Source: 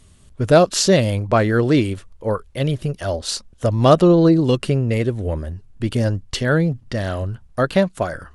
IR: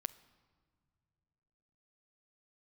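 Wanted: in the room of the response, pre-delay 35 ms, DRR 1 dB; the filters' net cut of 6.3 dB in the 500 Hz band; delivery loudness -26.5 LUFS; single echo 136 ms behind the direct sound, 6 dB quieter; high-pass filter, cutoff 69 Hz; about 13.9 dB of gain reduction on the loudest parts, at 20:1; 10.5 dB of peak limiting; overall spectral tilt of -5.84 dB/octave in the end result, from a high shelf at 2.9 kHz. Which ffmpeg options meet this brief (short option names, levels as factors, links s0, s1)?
-filter_complex "[0:a]highpass=69,equalizer=f=500:t=o:g=-8,highshelf=f=2900:g=-5.5,acompressor=threshold=0.0562:ratio=20,alimiter=level_in=1.33:limit=0.0631:level=0:latency=1,volume=0.75,aecho=1:1:136:0.501,asplit=2[s0][s1];[1:a]atrim=start_sample=2205,adelay=35[s2];[s1][s2]afir=irnorm=-1:irlink=0,volume=1.12[s3];[s0][s3]amix=inputs=2:normalize=0,volume=1.88"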